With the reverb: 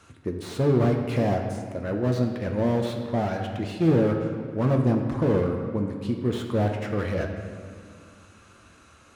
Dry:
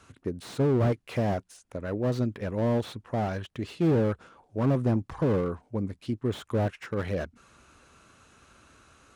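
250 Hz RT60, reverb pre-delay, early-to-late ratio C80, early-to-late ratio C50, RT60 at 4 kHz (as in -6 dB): 2.7 s, 6 ms, 6.0 dB, 5.0 dB, 1.5 s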